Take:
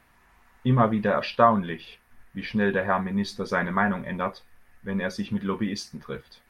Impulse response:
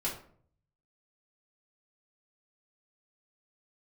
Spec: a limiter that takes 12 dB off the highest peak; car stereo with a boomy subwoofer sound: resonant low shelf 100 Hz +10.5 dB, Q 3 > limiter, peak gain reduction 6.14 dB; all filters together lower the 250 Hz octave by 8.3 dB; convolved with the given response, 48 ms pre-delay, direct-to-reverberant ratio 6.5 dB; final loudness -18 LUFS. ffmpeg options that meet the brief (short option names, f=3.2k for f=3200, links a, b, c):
-filter_complex "[0:a]equalizer=f=250:t=o:g=-7,alimiter=limit=-17.5dB:level=0:latency=1,asplit=2[a][b];[1:a]atrim=start_sample=2205,adelay=48[c];[b][c]afir=irnorm=-1:irlink=0,volume=-11dB[d];[a][d]amix=inputs=2:normalize=0,lowshelf=f=100:t=q:w=3:g=10.5,volume=14.5dB,alimiter=limit=-6.5dB:level=0:latency=1"